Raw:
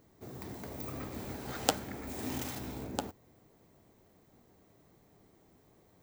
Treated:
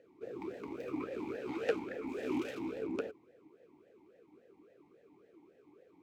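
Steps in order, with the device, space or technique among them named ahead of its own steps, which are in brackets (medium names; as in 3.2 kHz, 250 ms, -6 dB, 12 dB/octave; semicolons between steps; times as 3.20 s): talk box (valve stage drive 30 dB, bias 0.75; talking filter e-u 3.6 Hz); trim +17.5 dB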